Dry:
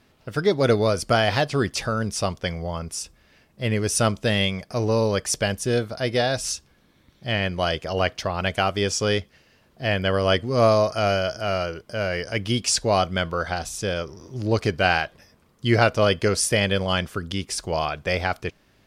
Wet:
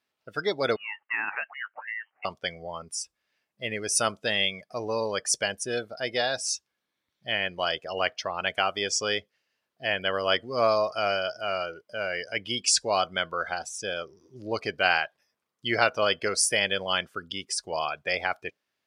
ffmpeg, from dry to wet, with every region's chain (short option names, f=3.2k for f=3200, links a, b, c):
-filter_complex "[0:a]asettb=1/sr,asplit=3[a][b][c];[a]atrim=end=0.764[d];[b]atrim=start=0.76:end=2.25,asetpts=PTS-STARTPTS,afade=t=in:d=0.004:c=qsin,afade=t=out:st=1.486:d=0.004:c=qsin,highpass=1.5k,lowpass=f=2.8k:t=q:w=0.5098,lowpass=f=2.8k:t=q:w=0.6013,lowpass=f=2.8k:t=q:w=0.9,lowpass=f=2.8k:t=q:w=2.563,afreqshift=-3300[e];[c]atrim=start=2.246[f];[d][e]acrossfade=d=0.004:c1=hsin:c2=qsin[g];[g][f]acrossfade=d=0.004:c1=qsin:c2=hsin,afftdn=nr=17:nf=-34,highpass=f=960:p=1"